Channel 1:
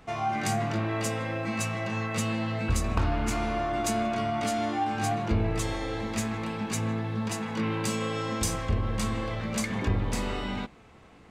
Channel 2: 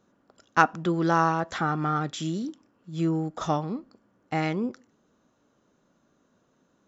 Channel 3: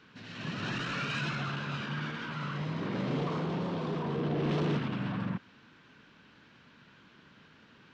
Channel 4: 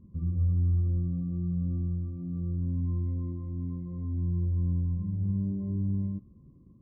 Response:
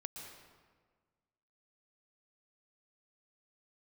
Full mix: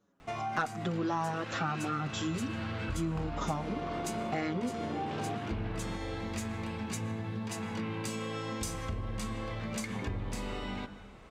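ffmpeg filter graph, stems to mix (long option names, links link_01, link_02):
-filter_complex "[0:a]bandreject=frequency=50.83:width_type=h:width=4,bandreject=frequency=101.66:width_type=h:width=4,bandreject=frequency=152.49:width_type=h:width=4,bandreject=frequency=203.32:width_type=h:width=4,bandreject=frequency=254.15:width_type=h:width=4,bandreject=frequency=304.98:width_type=h:width=4,bandreject=frequency=355.81:width_type=h:width=4,bandreject=frequency=406.64:width_type=h:width=4,bandreject=frequency=457.47:width_type=h:width=4,bandreject=frequency=508.3:width_type=h:width=4,bandreject=frequency=559.13:width_type=h:width=4,bandreject=frequency=609.96:width_type=h:width=4,bandreject=frequency=660.79:width_type=h:width=4,bandreject=frequency=711.62:width_type=h:width=4,bandreject=frequency=762.45:width_type=h:width=4,bandreject=frequency=813.28:width_type=h:width=4,bandreject=frequency=864.11:width_type=h:width=4,bandreject=frequency=914.94:width_type=h:width=4,bandreject=frequency=965.77:width_type=h:width=4,bandreject=frequency=1016.6:width_type=h:width=4,bandreject=frequency=1067.43:width_type=h:width=4,bandreject=frequency=1118.26:width_type=h:width=4,bandreject=frequency=1169.09:width_type=h:width=4,bandreject=frequency=1219.92:width_type=h:width=4,bandreject=frequency=1270.75:width_type=h:width=4,bandreject=frequency=1321.58:width_type=h:width=4,bandreject=frequency=1372.41:width_type=h:width=4,bandreject=frequency=1423.24:width_type=h:width=4,bandreject=frequency=1474.07:width_type=h:width=4,bandreject=frequency=1524.9:width_type=h:width=4,bandreject=frequency=1575.73:width_type=h:width=4,bandreject=frequency=1626.56:width_type=h:width=4,bandreject=frequency=1677.39:width_type=h:width=4,bandreject=frequency=1728.22:width_type=h:width=4,bandreject=frequency=1779.05:width_type=h:width=4,bandreject=frequency=1829.88:width_type=h:width=4,bandreject=frequency=1880.71:width_type=h:width=4,bandreject=frequency=1931.54:width_type=h:width=4,adelay=200,volume=-2dB,asplit=2[link_01][link_02];[link_02]volume=-10dB[link_03];[1:a]agate=range=-13dB:threshold=-59dB:ratio=16:detection=peak,acontrast=52,asplit=2[link_04][link_05];[link_05]adelay=6.5,afreqshift=-2.7[link_06];[link_04][link_06]amix=inputs=2:normalize=1,volume=3dB[link_07];[2:a]highpass=190,adelay=600,volume=1.5dB[link_08];[3:a]adelay=1900,volume=-12dB[link_09];[4:a]atrim=start_sample=2205[link_10];[link_03][link_10]afir=irnorm=-1:irlink=0[link_11];[link_01][link_07][link_08][link_09][link_11]amix=inputs=5:normalize=0,acompressor=threshold=-35dB:ratio=3"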